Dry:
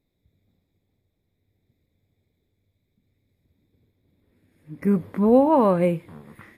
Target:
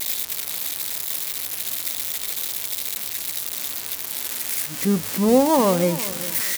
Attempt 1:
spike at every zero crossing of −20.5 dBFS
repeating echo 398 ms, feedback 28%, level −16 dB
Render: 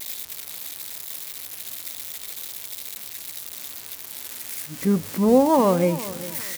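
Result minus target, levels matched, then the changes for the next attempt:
spike at every zero crossing: distortion −7 dB
change: spike at every zero crossing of −13 dBFS

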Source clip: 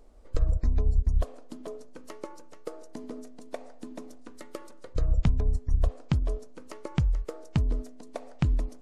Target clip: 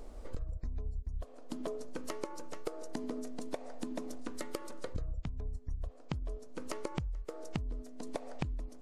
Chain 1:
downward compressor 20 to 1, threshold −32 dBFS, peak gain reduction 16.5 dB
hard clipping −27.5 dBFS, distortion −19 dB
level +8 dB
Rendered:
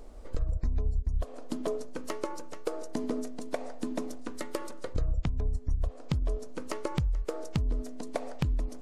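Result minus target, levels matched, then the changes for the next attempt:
downward compressor: peak gain reduction −9.5 dB
change: downward compressor 20 to 1, threshold −42 dBFS, peak gain reduction 26 dB

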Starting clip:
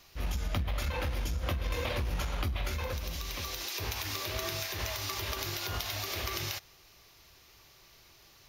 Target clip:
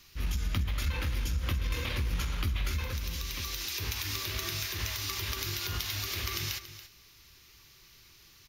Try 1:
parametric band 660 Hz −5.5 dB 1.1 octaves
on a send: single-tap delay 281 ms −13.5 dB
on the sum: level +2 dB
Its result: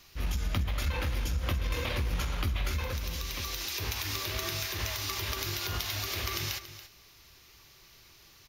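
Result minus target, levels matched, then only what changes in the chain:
500 Hz band +4.5 dB
change: parametric band 660 Hz −14 dB 1.1 octaves

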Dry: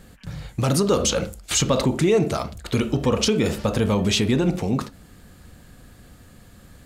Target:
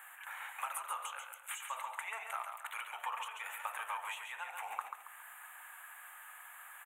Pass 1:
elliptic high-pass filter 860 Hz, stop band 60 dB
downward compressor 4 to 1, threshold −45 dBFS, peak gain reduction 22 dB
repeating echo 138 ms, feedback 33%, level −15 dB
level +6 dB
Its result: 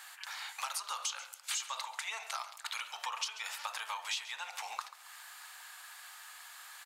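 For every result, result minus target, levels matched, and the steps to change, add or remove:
4,000 Hz band +8.0 dB; echo-to-direct −9 dB
add after downward compressor: Butterworth band-reject 4,900 Hz, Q 0.7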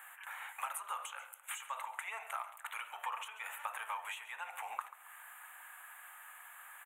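echo-to-direct −9 dB
change: repeating echo 138 ms, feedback 33%, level −6 dB

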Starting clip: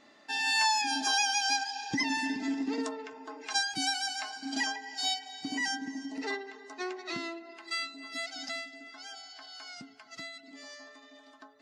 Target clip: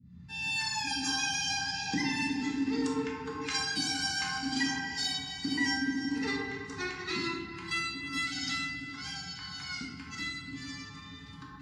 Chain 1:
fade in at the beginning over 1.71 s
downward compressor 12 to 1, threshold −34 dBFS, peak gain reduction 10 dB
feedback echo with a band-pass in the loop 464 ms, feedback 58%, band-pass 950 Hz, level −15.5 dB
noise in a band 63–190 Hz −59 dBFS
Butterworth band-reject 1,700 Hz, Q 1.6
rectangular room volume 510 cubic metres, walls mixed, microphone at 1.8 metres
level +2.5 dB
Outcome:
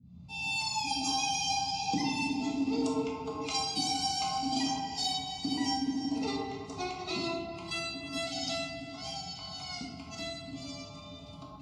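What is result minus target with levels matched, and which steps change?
2,000 Hz band −7.0 dB
change: Butterworth band-reject 640 Hz, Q 1.6

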